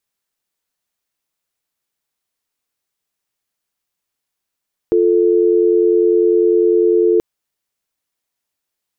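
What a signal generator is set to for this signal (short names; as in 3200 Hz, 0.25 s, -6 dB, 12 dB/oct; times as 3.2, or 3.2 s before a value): call progress tone dial tone, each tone -12.5 dBFS 2.28 s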